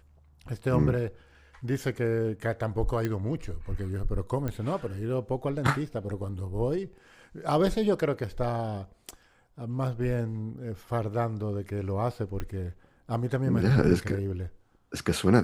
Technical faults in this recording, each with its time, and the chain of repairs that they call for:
3.05 s: pop -17 dBFS
4.48 s: pop -19 dBFS
12.40 s: pop -20 dBFS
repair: de-click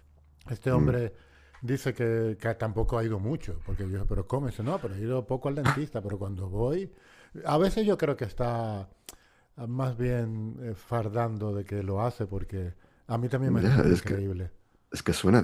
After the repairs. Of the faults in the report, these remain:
12.40 s: pop

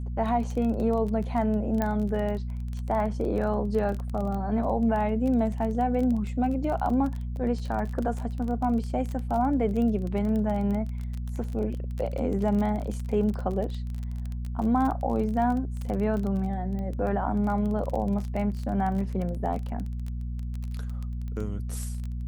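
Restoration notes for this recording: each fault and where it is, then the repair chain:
crackle 23 per s -31 dBFS
hum 60 Hz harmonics 4 -32 dBFS
1.82 s: pop -14 dBFS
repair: de-click; de-hum 60 Hz, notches 4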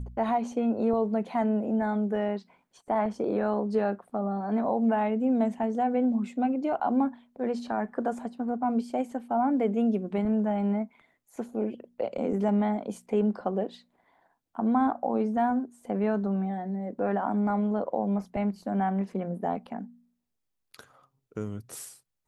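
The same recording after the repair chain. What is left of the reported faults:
nothing left

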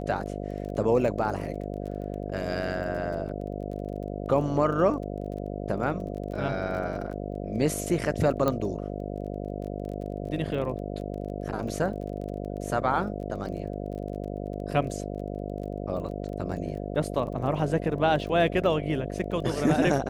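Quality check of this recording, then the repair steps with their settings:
buzz 50 Hz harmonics 14 -34 dBFS
crackle 21 per s -37 dBFS
8.48 s: pop -13 dBFS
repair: de-click; de-hum 50 Hz, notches 14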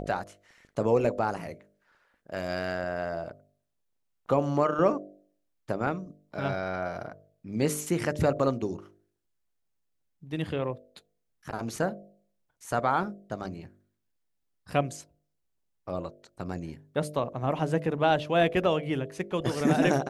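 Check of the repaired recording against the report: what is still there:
8.48 s: pop

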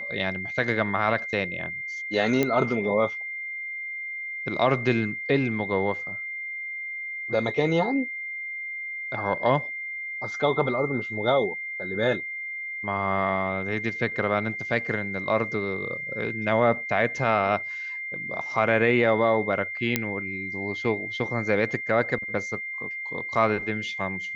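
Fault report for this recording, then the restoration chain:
whine 2.1 kHz -31 dBFS
2.43 s: pop -10 dBFS
19.96 s: pop -6 dBFS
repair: de-click; band-stop 2.1 kHz, Q 30

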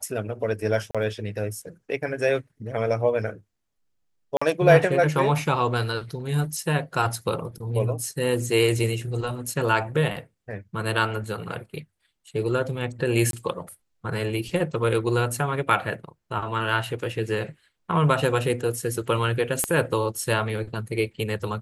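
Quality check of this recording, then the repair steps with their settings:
0.91–0.95 s: dropout 36 ms
4.37–4.42 s: dropout 45 ms
13.31–13.33 s: dropout 22 ms
19.64 s: pop -9 dBFS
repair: de-click; interpolate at 0.91 s, 36 ms; interpolate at 4.37 s, 45 ms; interpolate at 13.31 s, 22 ms

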